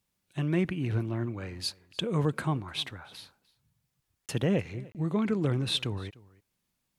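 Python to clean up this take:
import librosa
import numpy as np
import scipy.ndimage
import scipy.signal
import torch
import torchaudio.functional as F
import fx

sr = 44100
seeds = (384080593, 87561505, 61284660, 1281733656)

y = fx.fix_interpolate(x, sr, at_s=(4.26, 4.92), length_ms=28.0)
y = fx.fix_echo_inverse(y, sr, delay_ms=301, level_db=-22.5)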